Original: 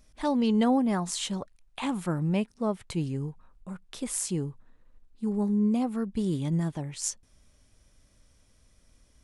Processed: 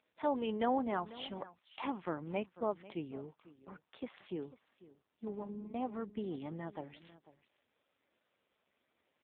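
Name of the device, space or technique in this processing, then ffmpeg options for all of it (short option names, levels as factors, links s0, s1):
satellite phone: -af "highpass=380,lowpass=3200,aecho=1:1:495:0.126,volume=0.75" -ar 8000 -c:a libopencore_amrnb -b:a 5900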